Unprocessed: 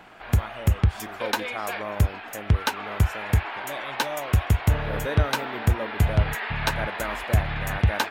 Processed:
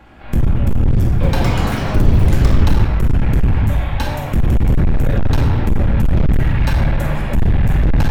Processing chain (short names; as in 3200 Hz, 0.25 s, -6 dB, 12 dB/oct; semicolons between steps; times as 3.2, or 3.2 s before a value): octaver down 2 oct, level +2 dB; low shelf 380 Hz +11 dB; shoebox room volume 910 m³, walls mixed, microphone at 2.3 m; hard clip -5.5 dBFS, distortion -6 dB; 1.04–3.22 echoes that change speed 0.186 s, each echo +5 st, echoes 3; gain -4 dB